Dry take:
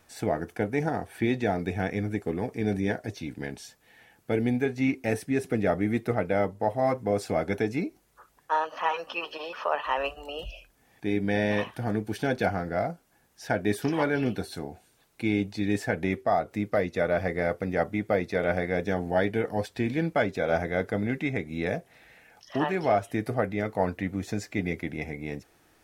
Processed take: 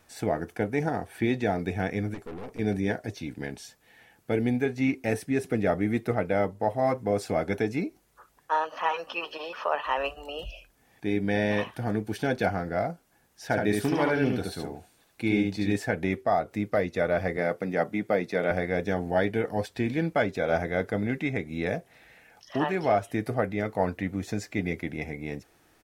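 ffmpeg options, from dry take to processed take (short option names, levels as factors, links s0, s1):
-filter_complex "[0:a]asettb=1/sr,asplit=3[s0][s1][s2];[s0]atrim=end=2.144[s3];[s1]atrim=start=2.14:end=2.59,asetpts=PTS-STARTPTS,afade=t=in:d=0.004:c=qsin,afade=t=out:st=0.446:d=0.004:c=qsin,aeval=exprs='(tanh(63.1*val(0)+0.55)-tanh(0.55))/63.1':c=same[s4];[s2]atrim=start=2.586[s5];[s3][s4]acrossfade=d=0.004:c1=hsin:c2=qsin[s6];[s6][s5]acrossfade=d=0.004:c1=qsin:c2=hsin,asplit=3[s7][s8][s9];[s7]afade=t=out:st=13.5:d=0.02[s10];[s8]aecho=1:1:72:0.668,afade=t=in:st=13.5:d=0.02,afade=t=out:st=15.72:d=0.02[s11];[s9]afade=t=in:st=15.72:d=0.02[s12];[s10][s11][s12]amix=inputs=3:normalize=0,asettb=1/sr,asplit=3[s13][s14][s15];[s13]atrim=end=17.374[s16];[s14]atrim=start=17.37:end=18.51,asetpts=PTS-STARTPTS,afade=t=in:d=0.004:c=qsin,afade=t=out:st=1.136:d=0.004:c=qsin,highpass=f=130:w=0.5412,highpass=f=130:w=1.3066[s17];[s15]atrim=start=18.506[s18];[s16][s17]acrossfade=d=0.004:c1=hsin:c2=qsin[s19];[s19][s18]acrossfade=d=0.004:c1=qsin:c2=hsin"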